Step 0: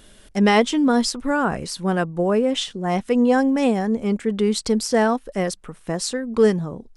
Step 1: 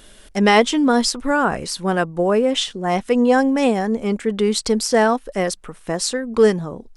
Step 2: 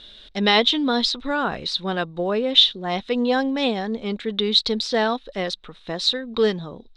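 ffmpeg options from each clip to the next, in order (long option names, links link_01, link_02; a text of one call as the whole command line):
ffmpeg -i in.wav -af "equalizer=frequency=130:width=0.57:gain=-5.5,volume=4dB" out.wav
ffmpeg -i in.wav -af "lowpass=frequency=3800:width_type=q:width=12,volume=-6dB" out.wav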